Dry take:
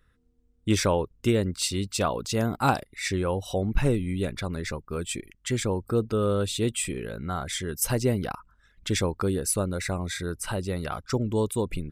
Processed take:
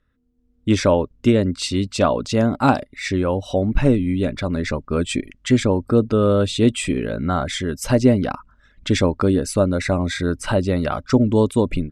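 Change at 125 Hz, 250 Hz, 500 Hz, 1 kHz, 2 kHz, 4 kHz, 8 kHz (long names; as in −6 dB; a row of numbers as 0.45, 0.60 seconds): +7.0, +10.5, +8.5, +6.0, +6.0, +4.5, −1.0 decibels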